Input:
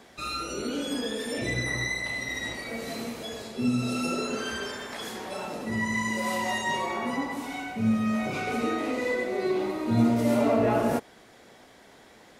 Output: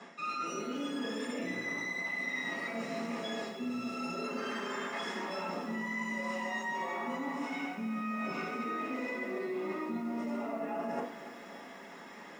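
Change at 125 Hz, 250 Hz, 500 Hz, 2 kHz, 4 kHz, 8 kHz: −16.5, −9.0, −9.0, −5.5, −9.0, −12.0 decibels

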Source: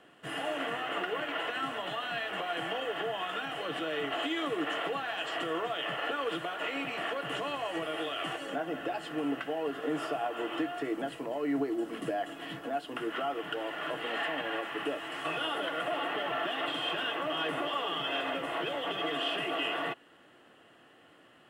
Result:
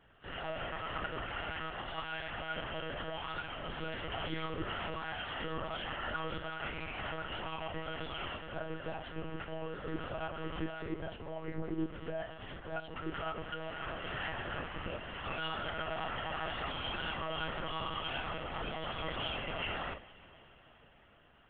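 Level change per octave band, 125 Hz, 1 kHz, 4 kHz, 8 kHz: +6.0 dB, −5.5 dB, −6.0 dB, below −25 dB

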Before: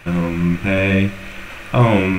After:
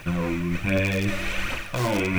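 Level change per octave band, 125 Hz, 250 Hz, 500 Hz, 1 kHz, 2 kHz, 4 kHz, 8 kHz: −9.5 dB, −8.5 dB, −8.0 dB, −8.5 dB, −5.0 dB, −2.0 dB, can't be measured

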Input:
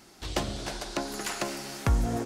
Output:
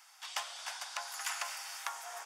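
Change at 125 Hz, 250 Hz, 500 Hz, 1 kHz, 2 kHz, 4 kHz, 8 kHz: below −40 dB, below −40 dB, −18.5 dB, −5.5 dB, −3.0 dB, −4.0 dB, −3.0 dB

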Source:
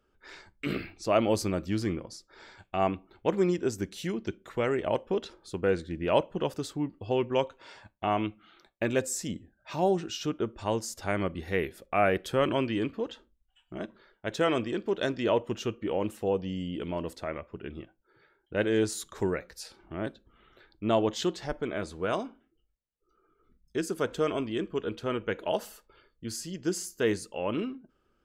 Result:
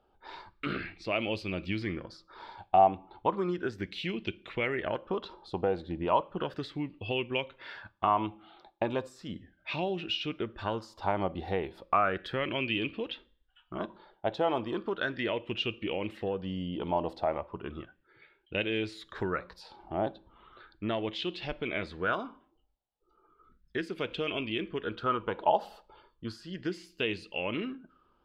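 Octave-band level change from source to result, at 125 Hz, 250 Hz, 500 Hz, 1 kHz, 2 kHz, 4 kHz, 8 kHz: −3.5 dB, −4.5 dB, −4.0 dB, +3.0 dB, +1.0 dB, +2.0 dB, below −20 dB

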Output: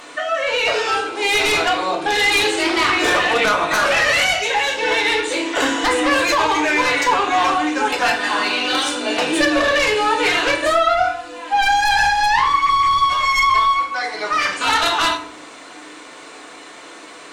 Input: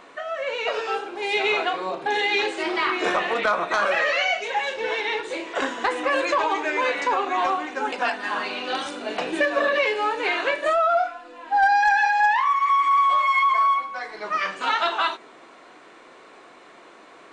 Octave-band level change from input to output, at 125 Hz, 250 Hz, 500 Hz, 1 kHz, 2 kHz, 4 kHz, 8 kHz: can't be measured, +10.0 dB, +4.5 dB, +4.0 dB, +6.5 dB, +10.5 dB, +16.5 dB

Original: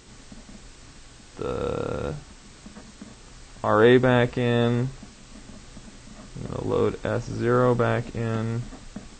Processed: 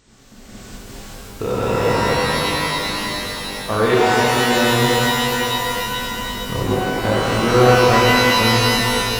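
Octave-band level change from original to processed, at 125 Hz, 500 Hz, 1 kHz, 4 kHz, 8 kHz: +5.5 dB, +6.0 dB, +13.0 dB, +19.5 dB, can't be measured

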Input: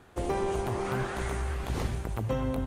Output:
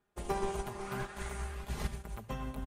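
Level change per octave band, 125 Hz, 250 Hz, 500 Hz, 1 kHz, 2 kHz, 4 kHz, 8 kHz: −9.5, −9.0, −8.5, −5.5, −6.0, −5.0, −3.0 decibels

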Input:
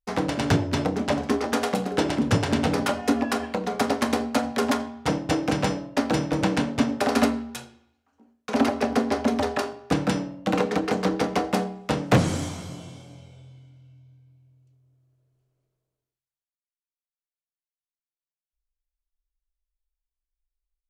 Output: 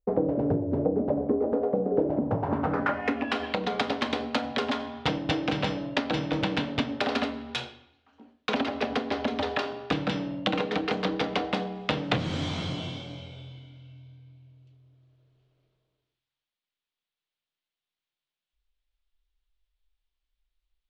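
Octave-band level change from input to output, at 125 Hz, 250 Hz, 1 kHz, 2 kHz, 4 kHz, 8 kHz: −5.0, −4.5, −4.0, −2.0, 0.0, −14.5 decibels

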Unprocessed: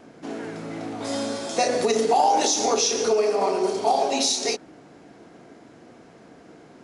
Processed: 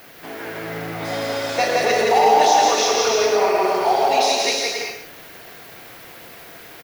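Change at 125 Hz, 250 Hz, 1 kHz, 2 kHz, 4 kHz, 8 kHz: +5.5, −1.0, +6.5, +11.0, +4.5, +0.5 decibels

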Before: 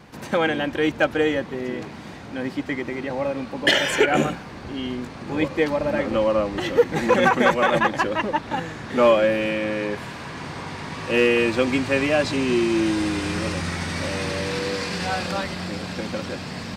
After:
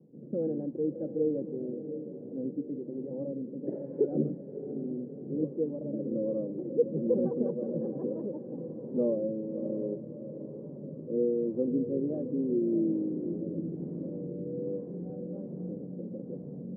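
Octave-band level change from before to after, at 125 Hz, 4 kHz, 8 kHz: −9.0 dB, below −40 dB, below −40 dB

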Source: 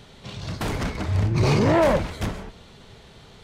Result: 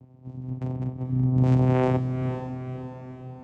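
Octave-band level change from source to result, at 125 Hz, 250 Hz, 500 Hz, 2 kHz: +1.0, −0.5, −6.0, −12.0 decibels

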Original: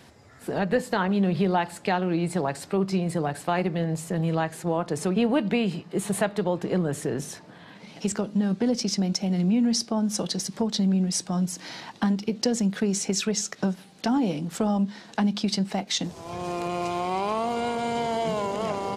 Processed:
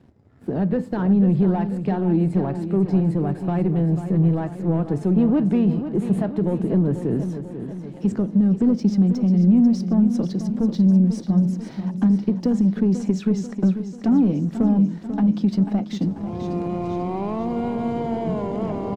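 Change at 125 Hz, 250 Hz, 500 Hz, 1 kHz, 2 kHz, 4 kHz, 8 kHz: +8.0 dB, +7.5 dB, +0.5 dB, −4.0 dB, can't be measured, below −10 dB, below −15 dB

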